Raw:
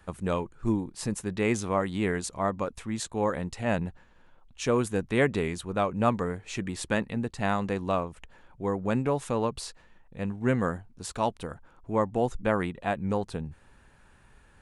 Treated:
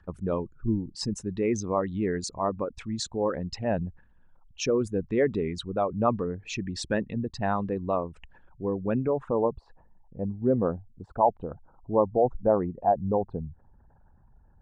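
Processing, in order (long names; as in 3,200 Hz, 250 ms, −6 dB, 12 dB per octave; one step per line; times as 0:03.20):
spectral envelope exaggerated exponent 2
low-pass filter sweep 5,300 Hz → 820 Hz, 0:08.69–0:09.40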